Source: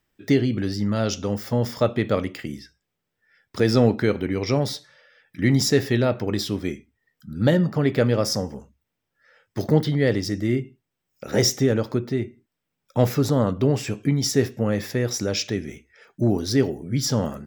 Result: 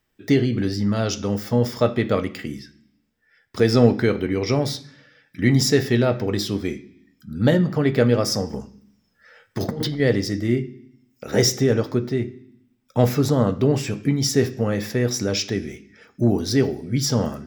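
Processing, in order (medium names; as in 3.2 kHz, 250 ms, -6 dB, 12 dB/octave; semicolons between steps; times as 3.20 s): 8.53–10.00 s: compressor with a negative ratio -27 dBFS, ratio -1; on a send: reverberation RT60 0.65 s, pre-delay 3 ms, DRR 9 dB; on the sum: trim +1 dB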